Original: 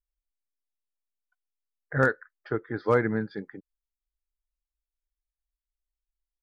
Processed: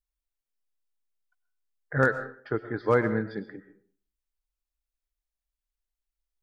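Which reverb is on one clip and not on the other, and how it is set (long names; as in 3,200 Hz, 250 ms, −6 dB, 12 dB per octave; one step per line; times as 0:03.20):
comb and all-pass reverb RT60 0.47 s, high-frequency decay 0.65×, pre-delay 75 ms, DRR 11 dB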